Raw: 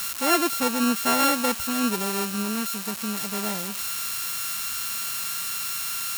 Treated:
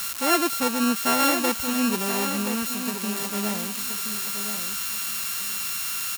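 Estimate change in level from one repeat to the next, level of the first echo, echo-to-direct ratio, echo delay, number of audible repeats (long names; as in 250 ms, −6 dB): −15.0 dB, −8.0 dB, −8.0 dB, 1,025 ms, 2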